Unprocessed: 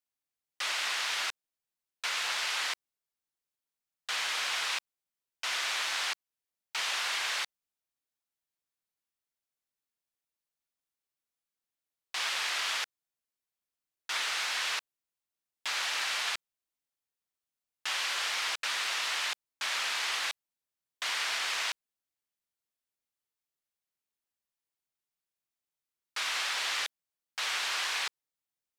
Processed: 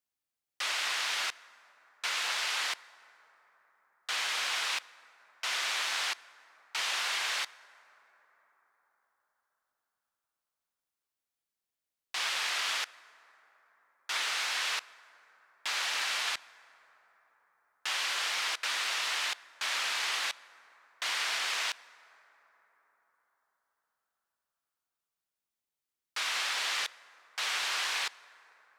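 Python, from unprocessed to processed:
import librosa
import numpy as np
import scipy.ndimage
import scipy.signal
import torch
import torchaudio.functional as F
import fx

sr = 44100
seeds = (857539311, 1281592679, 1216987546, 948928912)

y = fx.rev_plate(x, sr, seeds[0], rt60_s=4.9, hf_ratio=0.35, predelay_ms=0, drr_db=19.0)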